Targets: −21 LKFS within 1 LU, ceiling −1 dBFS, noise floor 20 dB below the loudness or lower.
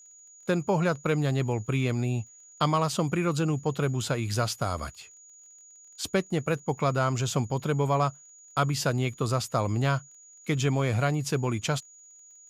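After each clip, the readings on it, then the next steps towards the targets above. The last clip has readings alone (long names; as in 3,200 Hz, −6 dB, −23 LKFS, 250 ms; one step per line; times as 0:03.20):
crackle rate 23 per second; interfering tone 6,800 Hz; level of the tone −50 dBFS; integrated loudness −28.0 LKFS; sample peak −11.5 dBFS; target loudness −21.0 LKFS
→ click removal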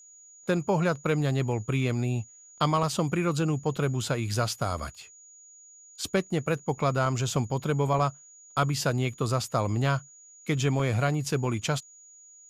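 crackle rate 0.080 per second; interfering tone 6,800 Hz; level of the tone −50 dBFS
→ notch filter 6,800 Hz, Q 30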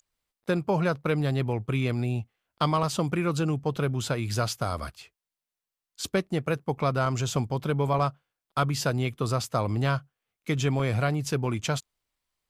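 interfering tone none found; integrated loudness −28.0 LKFS; sample peak −11.5 dBFS; target loudness −21.0 LKFS
→ level +7 dB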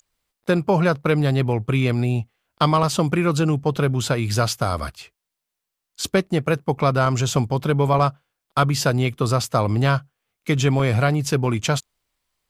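integrated loudness −21.0 LKFS; sample peak −4.5 dBFS; background noise floor −83 dBFS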